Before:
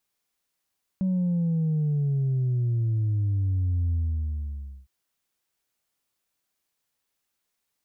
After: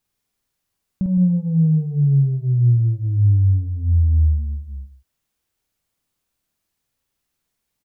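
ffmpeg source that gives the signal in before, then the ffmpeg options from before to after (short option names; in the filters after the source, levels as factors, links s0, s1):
-f lavfi -i "aevalsrc='0.0794*clip((3.86-t)/0.95,0,1)*tanh(1.12*sin(2*PI*190*3.86/log(65/190)*(exp(log(65/190)*t/3.86)-1)))/tanh(1.12)':d=3.86:s=44100"
-af "lowshelf=f=220:g=12,acompressor=threshold=0.126:ratio=2.5,aecho=1:1:50|164:0.708|0.282"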